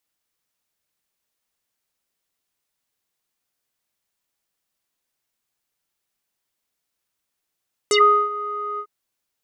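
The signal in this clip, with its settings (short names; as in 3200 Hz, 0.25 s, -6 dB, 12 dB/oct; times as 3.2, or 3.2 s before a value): synth note square G#4 12 dB/oct, low-pass 1200 Hz, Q 10, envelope 3 oct, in 0.10 s, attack 1.1 ms, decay 0.38 s, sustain -18 dB, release 0.07 s, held 0.88 s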